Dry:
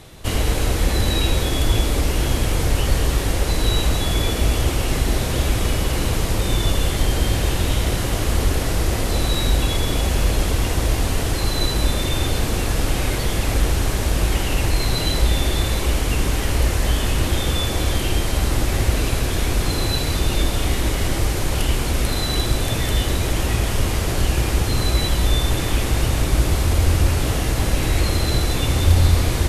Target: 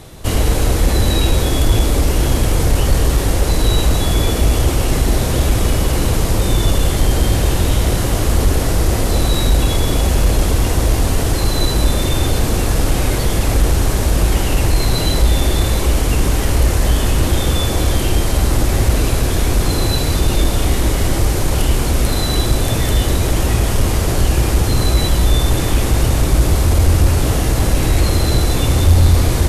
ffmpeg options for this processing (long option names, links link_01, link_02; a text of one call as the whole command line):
ffmpeg -i in.wav -af "equalizer=frequency=2600:width=0.7:gain=-4.5,acontrast=49" out.wav